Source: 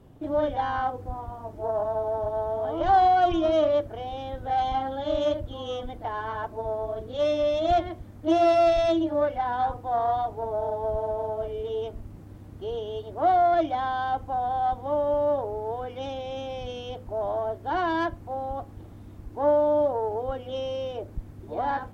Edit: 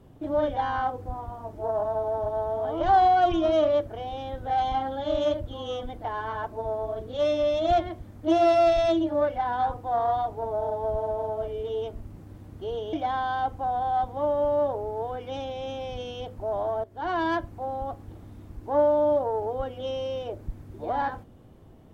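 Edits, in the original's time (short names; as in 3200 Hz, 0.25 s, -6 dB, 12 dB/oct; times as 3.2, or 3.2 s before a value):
12.93–13.62 cut
17.53–17.9 fade in, from -14 dB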